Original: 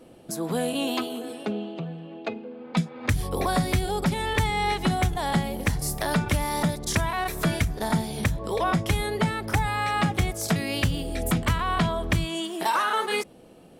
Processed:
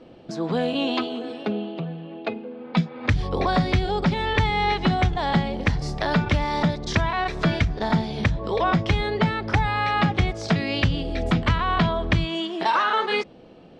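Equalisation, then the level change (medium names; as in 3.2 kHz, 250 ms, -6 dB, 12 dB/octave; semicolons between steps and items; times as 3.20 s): low-pass 4.9 kHz 24 dB/octave; +3.0 dB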